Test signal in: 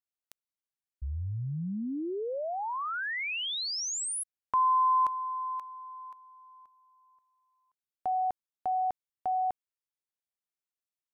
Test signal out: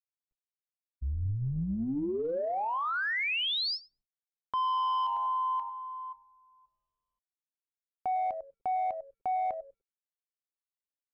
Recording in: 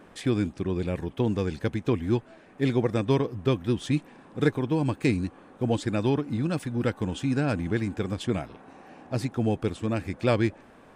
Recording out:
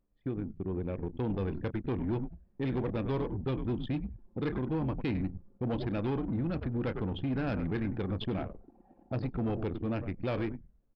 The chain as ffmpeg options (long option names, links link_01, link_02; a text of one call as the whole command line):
ffmpeg -i in.wav -filter_complex "[0:a]asplit=2[link_01][link_02];[link_02]adelay=31,volume=-13dB[link_03];[link_01][link_03]amix=inputs=2:normalize=0,asplit=4[link_04][link_05][link_06][link_07];[link_05]adelay=99,afreqshift=-97,volume=-11dB[link_08];[link_06]adelay=198,afreqshift=-194,volume=-21.2dB[link_09];[link_07]adelay=297,afreqshift=-291,volume=-31.3dB[link_10];[link_04][link_08][link_09][link_10]amix=inputs=4:normalize=0,dynaudnorm=framelen=110:gausssize=17:maxgain=11dB,aresample=11025,asoftclip=type=tanh:threshold=-12.5dB,aresample=44100,acrusher=bits=7:mix=0:aa=0.000001,aemphasis=mode=reproduction:type=50kf,anlmdn=251,highshelf=frequency=4100:gain=8,alimiter=limit=-20dB:level=0:latency=1:release=222,volume=-6.5dB" out.wav